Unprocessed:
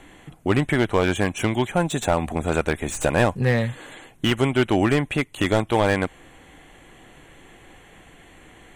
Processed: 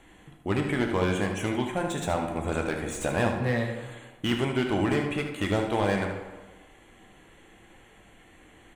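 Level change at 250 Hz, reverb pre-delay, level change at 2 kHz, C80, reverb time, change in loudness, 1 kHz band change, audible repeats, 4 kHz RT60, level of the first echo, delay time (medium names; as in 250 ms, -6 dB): -5.0 dB, 6 ms, -6.0 dB, 7.5 dB, 1.3 s, -6.0 dB, -5.5 dB, 1, 0.80 s, -9.0 dB, 76 ms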